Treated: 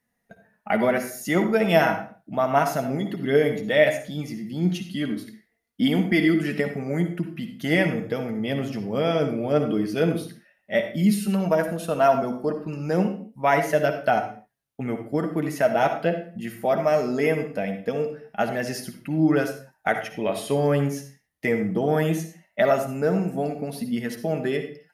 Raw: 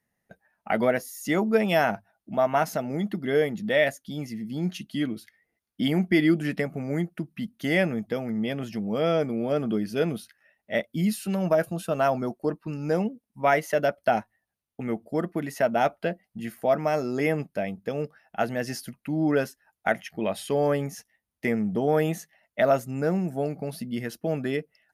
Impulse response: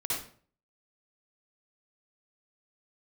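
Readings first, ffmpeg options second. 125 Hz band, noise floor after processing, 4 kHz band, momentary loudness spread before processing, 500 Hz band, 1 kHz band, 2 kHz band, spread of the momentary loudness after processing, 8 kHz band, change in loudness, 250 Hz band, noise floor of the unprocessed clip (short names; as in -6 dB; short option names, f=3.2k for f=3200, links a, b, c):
+3.5 dB, -73 dBFS, +3.0 dB, 9 LU, +2.5 dB, +3.0 dB, +3.0 dB, 10 LU, +2.5 dB, +3.0 dB, +3.0 dB, -84 dBFS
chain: -filter_complex "[0:a]flanger=delay=4:depth=3.5:regen=49:speed=0.17:shape=triangular,asplit=2[a][b];[1:a]atrim=start_sample=2205,afade=t=out:st=0.33:d=0.01,atrim=end_sample=14994[c];[b][c]afir=irnorm=-1:irlink=0,volume=-10.5dB[d];[a][d]amix=inputs=2:normalize=0,volume=4.5dB"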